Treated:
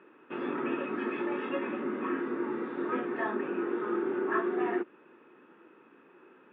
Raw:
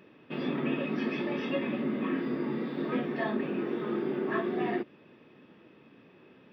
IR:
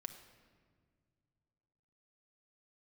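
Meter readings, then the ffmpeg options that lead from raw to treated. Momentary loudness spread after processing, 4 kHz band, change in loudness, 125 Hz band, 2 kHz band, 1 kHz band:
5 LU, no reading, -0.5 dB, -11.5 dB, +1.0 dB, +3.0 dB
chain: -af "highpass=330,equalizer=f=350:t=q:w=4:g=5,equalizer=f=630:t=q:w=4:g=-6,equalizer=f=930:t=q:w=4:g=4,equalizer=f=1400:t=q:w=4:g=9,equalizer=f=2100:t=q:w=4:g=-4,lowpass=f=2600:w=0.5412,lowpass=f=2600:w=1.3066"

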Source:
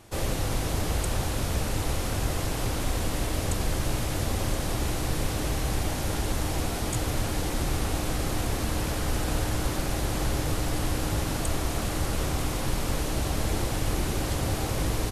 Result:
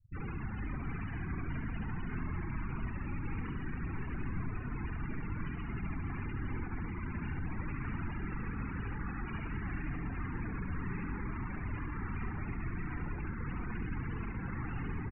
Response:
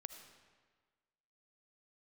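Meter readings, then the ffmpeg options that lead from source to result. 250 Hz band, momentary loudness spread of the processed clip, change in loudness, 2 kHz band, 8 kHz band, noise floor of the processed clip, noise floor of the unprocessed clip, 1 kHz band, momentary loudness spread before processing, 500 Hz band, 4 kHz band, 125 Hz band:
-7.5 dB, 1 LU, -10.5 dB, -8.0 dB, under -40 dB, -40 dBFS, -30 dBFS, -12.0 dB, 1 LU, -17.5 dB, under -25 dB, -9.0 dB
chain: -filter_complex "[0:a]acrusher=bits=8:mode=log:mix=0:aa=0.000001,asplit=2[s0][s1];[s1]aecho=0:1:828:0.158[s2];[s0][s2]amix=inputs=2:normalize=0,aeval=exprs='0.0335*(abs(mod(val(0)/0.0335+3,4)-2)-1)':c=same,lowpass=f=2800:w=0.5412,lowpass=f=2800:w=1.3066,equalizer=f=560:w=0.93:g=-13,asplit=2[s3][s4];[s4]adelay=23,volume=0.224[s5];[s3][s5]amix=inputs=2:normalize=0,asplit=2[s6][s7];[1:a]atrim=start_sample=2205,asetrate=31311,aresample=44100[s8];[s7][s8]afir=irnorm=-1:irlink=0,volume=0.891[s9];[s6][s9]amix=inputs=2:normalize=0,afftfilt=real='re*gte(hypot(re,im),0.0282)':imag='im*gte(hypot(re,im),0.0282)':win_size=1024:overlap=0.75,aecho=1:1:71|100|130|131|595:0.531|0.119|0.15|0.15|0.316,volume=0.631"

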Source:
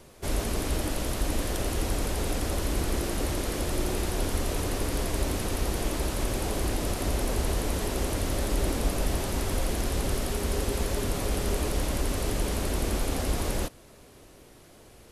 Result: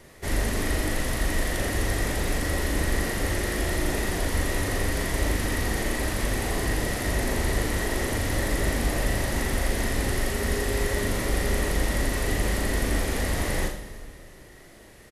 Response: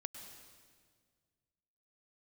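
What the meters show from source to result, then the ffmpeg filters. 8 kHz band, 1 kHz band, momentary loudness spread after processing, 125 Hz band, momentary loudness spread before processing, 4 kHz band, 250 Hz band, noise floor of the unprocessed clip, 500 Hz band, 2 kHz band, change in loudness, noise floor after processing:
+2.0 dB, +2.0 dB, 1 LU, +2.5 dB, 1 LU, +2.5 dB, +2.0 dB, -52 dBFS, +2.0 dB, +9.0 dB, +3.0 dB, -48 dBFS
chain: -filter_complex "[0:a]equalizer=f=1900:t=o:w=0.2:g=15,asplit=2[s0][s1];[s1]adelay=39,volume=0.596[s2];[s0][s2]amix=inputs=2:normalize=0,asplit=2[s3][s4];[1:a]atrim=start_sample=2205,adelay=81[s5];[s4][s5]afir=irnorm=-1:irlink=0,volume=0.596[s6];[s3][s6]amix=inputs=2:normalize=0"

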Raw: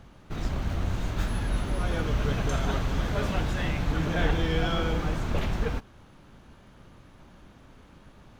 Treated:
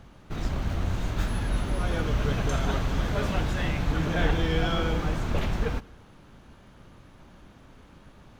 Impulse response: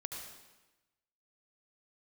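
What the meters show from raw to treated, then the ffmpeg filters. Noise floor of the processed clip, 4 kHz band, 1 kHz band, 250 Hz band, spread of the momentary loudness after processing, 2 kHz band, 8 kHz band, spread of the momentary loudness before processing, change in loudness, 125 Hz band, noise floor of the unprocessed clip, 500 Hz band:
-53 dBFS, +1.0 dB, +0.5 dB, +0.5 dB, 5 LU, +1.0 dB, +0.5 dB, 5 LU, +1.0 dB, +1.0 dB, -53 dBFS, +0.5 dB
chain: -filter_complex "[0:a]asplit=2[s0][s1];[1:a]atrim=start_sample=2205[s2];[s1][s2]afir=irnorm=-1:irlink=0,volume=0.133[s3];[s0][s3]amix=inputs=2:normalize=0"

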